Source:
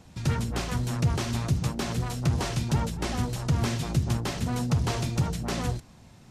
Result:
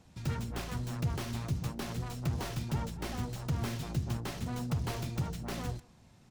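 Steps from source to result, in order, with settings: tracing distortion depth 0.12 ms; speakerphone echo 0.16 s, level -23 dB; gain -8 dB

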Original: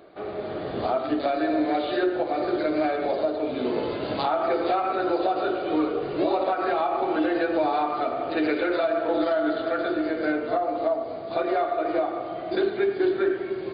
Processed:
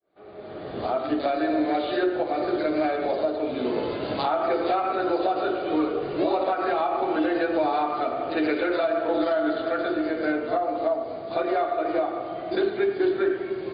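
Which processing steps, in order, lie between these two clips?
opening faded in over 1.06 s

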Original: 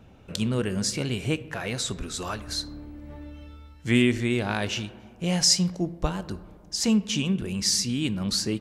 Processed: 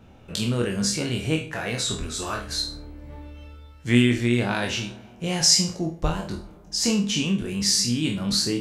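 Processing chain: spectral trails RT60 0.35 s; flutter echo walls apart 4.3 m, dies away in 0.25 s

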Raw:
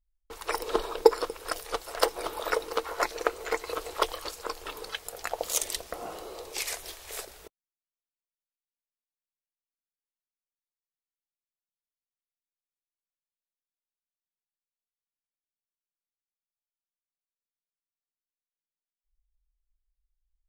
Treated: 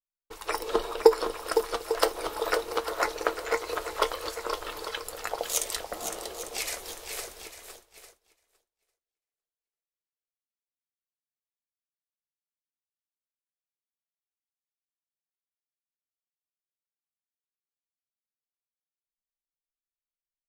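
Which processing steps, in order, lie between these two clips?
flange 1.1 Hz, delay 8.4 ms, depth 1.2 ms, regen +66%; swung echo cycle 0.849 s, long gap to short 1.5:1, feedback 31%, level -8 dB; expander -48 dBFS; gain +4.5 dB

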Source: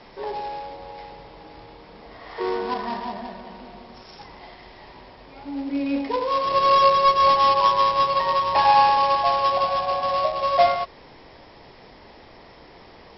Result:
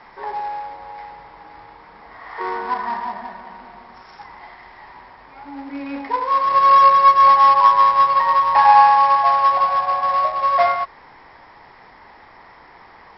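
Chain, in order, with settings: band shelf 1300 Hz +11.5 dB; gain -5 dB

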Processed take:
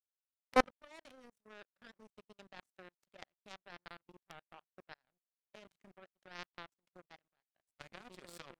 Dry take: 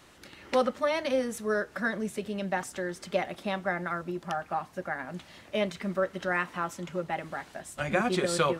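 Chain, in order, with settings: level quantiser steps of 11 dB; power-law curve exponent 3; gain +7 dB

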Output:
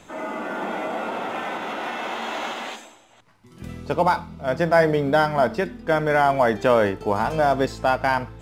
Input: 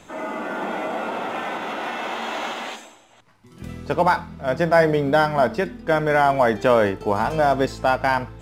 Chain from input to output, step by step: 3.79–4.44 bell 1700 Hz -4.5 dB -> -13 dB 0.28 oct; gain -1 dB

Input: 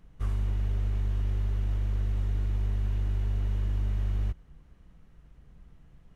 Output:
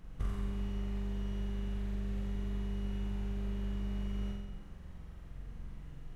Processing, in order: compressor 6:1, threshold -36 dBFS, peak gain reduction 11 dB; on a send: flutter echo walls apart 7.7 m, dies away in 1.2 s; on the sum: gain +3 dB

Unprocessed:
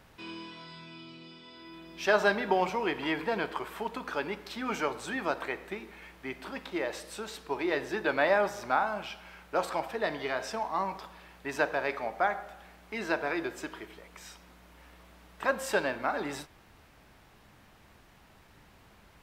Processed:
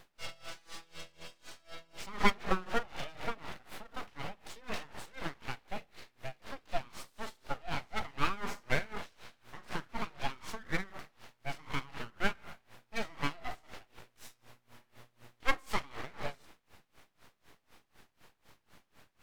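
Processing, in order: de-hum 63.54 Hz, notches 7; in parallel at -3 dB: limiter -20 dBFS, peak gain reduction 8.5 dB; on the sum: harmonic-percussive split percussive -17 dB; full-wave rectifier; dB-linear tremolo 4 Hz, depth 24 dB; gain +2.5 dB

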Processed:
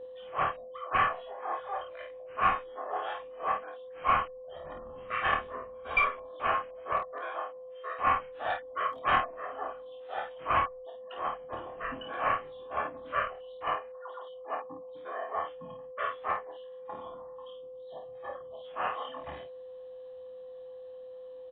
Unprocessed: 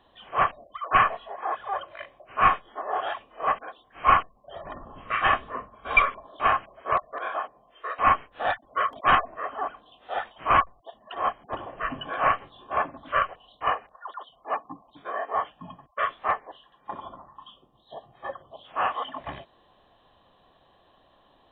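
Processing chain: whine 510 Hz -34 dBFS; early reflections 12 ms -10.5 dB, 26 ms -5 dB, 52 ms -5.5 dB; added harmonics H 4 -39 dB, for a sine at -3.5 dBFS; gain -8.5 dB

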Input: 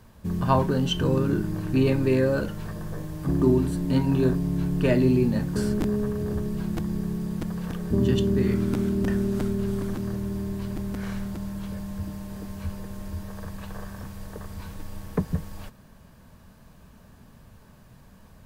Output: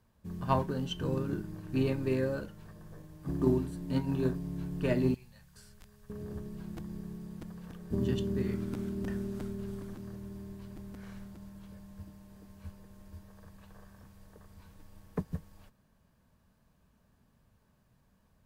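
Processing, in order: added harmonics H 3 -24 dB, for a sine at -8.5 dBFS; 5.14–6.1 passive tone stack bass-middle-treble 10-0-10; upward expander 1.5:1, over -37 dBFS; gain -5 dB

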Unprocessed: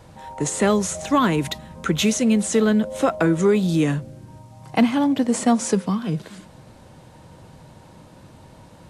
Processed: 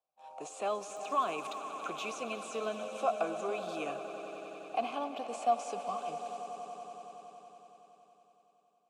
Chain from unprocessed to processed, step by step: gate -39 dBFS, range -31 dB; tone controls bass -8 dB, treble +13 dB; limiter -12 dBFS, peak gain reduction 7.5 dB; vowel filter a; 0.89–1.56 crackle 52/s -46 dBFS; on a send: swelling echo 93 ms, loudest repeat 5, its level -15 dB

